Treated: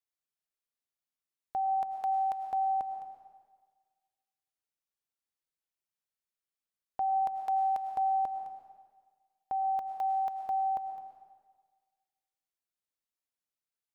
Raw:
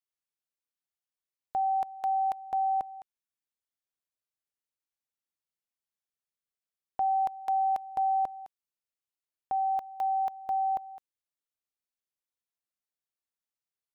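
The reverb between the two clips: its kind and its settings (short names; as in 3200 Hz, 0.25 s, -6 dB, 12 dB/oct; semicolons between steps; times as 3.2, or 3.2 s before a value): digital reverb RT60 1.5 s, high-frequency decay 0.95×, pre-delay 65 ms, DRR 5.5 dB; gain -3 dB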